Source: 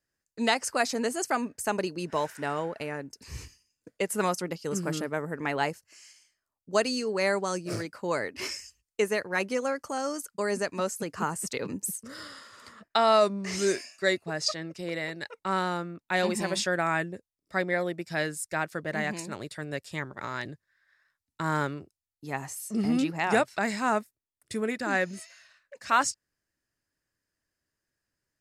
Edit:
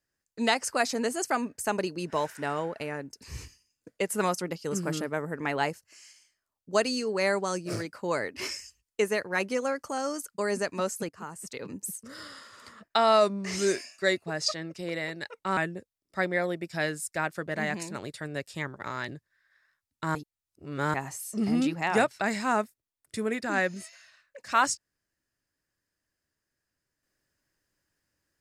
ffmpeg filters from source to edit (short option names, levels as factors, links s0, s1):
-filter_complex "[0:a]asplit=5[s0][s1][s2][s3][s4];[s0]atrim=end=11.09,asetpts=PTS-STARTPTS,afade=t=out:st=11.086:d=0.004:c=hsin:silence=0.199526[s5];[s1]atrim=start=11.09:end=15.572,asetpts=PTS-STARTPTS,afade=t=in:d=1.32:silence=0.199526[s6];[s2]atrim=start=16.938:end=21.522[s7];[s3]atrim=start=21.518:end=22.312,asetpts=PTS-STARTPTS,areverse[s8];[s4]atrim=start=22.308[s9];[s5][s6]concat=n=2:v=0:a=1[s10];[s10][s7]acrossfade=d=0.004:c1=hsin:c2=hsin[s11];[s11][s8]acrossfade=d=0.004:c1=hsin:c2=hsin[s12];[s12][s9]acrossfade=d=0.004:c1=hsin:c2=hsin"